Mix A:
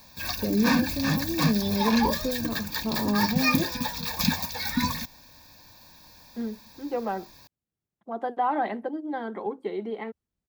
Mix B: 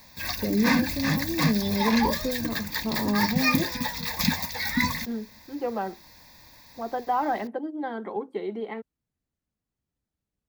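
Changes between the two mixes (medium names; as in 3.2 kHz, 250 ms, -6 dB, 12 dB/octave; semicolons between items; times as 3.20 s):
second voice: entry -1.30 s; background: remove Butterworth band-stop 2 kHz, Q 5.9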